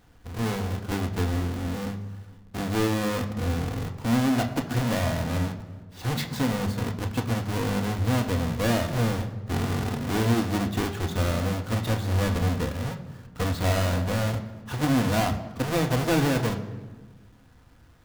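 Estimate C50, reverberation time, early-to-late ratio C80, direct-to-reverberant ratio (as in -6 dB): 11.0 dB, 1.3 s, 12.5 dB, 4.0 dB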